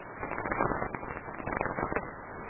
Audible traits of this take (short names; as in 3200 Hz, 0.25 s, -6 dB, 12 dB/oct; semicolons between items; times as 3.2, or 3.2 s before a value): a quantiser's noise floor 8-bit, dither triangular; random-step tremolo; aliases and images of a low sample rate 3200 Hz, jitter 0%; MP3